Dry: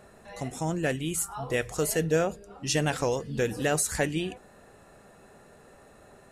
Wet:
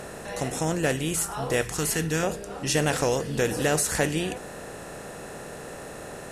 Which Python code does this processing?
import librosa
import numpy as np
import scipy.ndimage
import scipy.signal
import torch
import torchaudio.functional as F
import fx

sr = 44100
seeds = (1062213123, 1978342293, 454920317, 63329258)

y = fx.bin_compress(x, sr, power=0.6)
y = fx.peak_eq(y, sr, hz=580.0, db=-14.0, octaves=0.65, at=(1.63, 2.23))